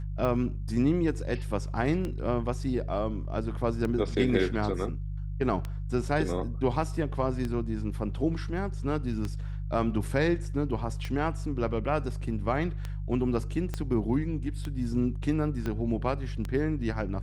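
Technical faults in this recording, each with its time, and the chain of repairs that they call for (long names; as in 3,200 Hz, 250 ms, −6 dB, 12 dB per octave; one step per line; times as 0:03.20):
mains hum 50 Hz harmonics 3 −34 dBFS
scratch tick 33 1/3 rpm −20 dBFS
0:13.74: click −19 dBFS
0:15.66: click −20 dBFS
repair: click removal
hum removal 50 Hz, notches 3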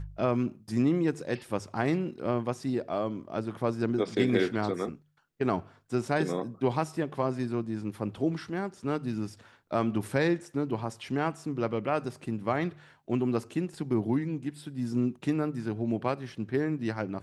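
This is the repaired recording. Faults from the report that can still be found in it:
0:13.74: click
0:15.66: click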